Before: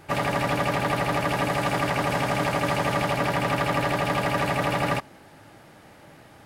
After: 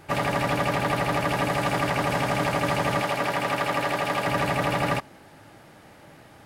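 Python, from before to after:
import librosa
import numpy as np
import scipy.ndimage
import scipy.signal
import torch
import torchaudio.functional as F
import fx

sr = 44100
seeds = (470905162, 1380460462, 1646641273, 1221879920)

y = fx.low_shelf(x, sr, hz=170.0, db=-12.0, at=(3.01, 4.27))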